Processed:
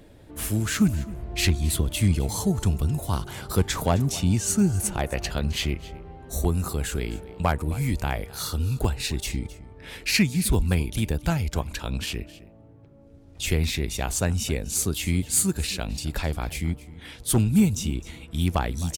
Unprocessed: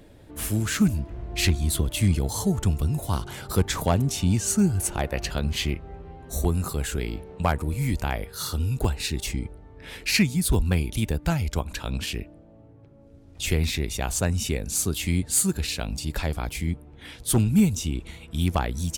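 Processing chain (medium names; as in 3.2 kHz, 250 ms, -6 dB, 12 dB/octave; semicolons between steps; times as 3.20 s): delay 262 ms -18.5 dB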